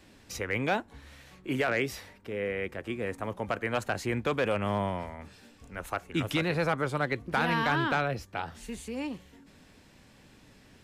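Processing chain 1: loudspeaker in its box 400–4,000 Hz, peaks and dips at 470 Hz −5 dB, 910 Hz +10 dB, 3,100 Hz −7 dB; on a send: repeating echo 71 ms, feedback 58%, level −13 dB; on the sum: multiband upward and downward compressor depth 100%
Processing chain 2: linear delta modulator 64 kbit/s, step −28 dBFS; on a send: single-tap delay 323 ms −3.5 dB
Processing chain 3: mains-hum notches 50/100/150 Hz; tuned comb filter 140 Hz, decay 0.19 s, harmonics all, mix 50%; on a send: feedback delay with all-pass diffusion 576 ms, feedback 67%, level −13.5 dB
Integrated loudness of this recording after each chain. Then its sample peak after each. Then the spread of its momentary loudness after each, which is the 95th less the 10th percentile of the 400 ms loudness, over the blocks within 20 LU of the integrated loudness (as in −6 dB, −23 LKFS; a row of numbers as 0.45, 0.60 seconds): −31.5, −29.0, −35.5 LKFS; −12.0, −13.5, −20.0 dBFS; 9, 6, 16 LU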